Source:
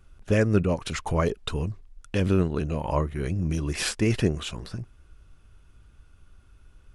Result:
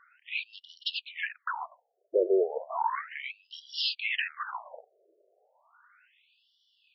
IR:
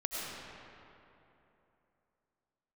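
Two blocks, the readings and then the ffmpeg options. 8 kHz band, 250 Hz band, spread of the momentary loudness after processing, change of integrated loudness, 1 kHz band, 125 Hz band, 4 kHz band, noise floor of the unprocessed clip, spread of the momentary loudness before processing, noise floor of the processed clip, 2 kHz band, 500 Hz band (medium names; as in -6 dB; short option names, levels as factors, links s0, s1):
under -25 dB, -15.0 dB, 15 LU, -5.5 dB, +0.5 dB, under -40 dB, +2.0 dB, -55 dBFS, 12 LU, -76 dBFS, +0.5 dB, -3.0 dB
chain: -filter_complex "[0:a]asplit=2[s0][s1];[s1]highpass=f=720:p=1,volume=8.91,asoftclip=type=tanh:threshold=0.376[s2];[s0][s2]amix=inputs=2:normalize=0,lowpass=f=2000:p=1,volume=0.501,afftfilt=real='re*between(b*sr/1024,480*pow(4100/480,0.5+0.5*sin(2*PI*0.34*pts/sr))/1.41,480*pow(4100/480,0.5+0.5*sin(2*PI*0.34*pts/sr))*1.41)':imag='im*between(b*sr/1024,480*pow(4100/480,0.5+0.5*sin(2*PI*0.34*pts/sr))/1.41,480*pow(4100/480,0.5+0.5*sin(2*PI*0.34*pts/sr))*1.41)':win_size=1024:overlap=0.75"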